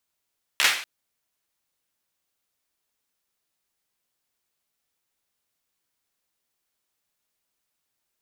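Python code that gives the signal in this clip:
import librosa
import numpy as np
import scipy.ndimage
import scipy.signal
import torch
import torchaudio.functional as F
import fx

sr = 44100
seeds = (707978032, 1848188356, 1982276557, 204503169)

y = fx.drum_clap(sr, seeds[0], length_s=0.24, bursts=4, spacing_ms=14, hz=2200.0, decay_s=0.48)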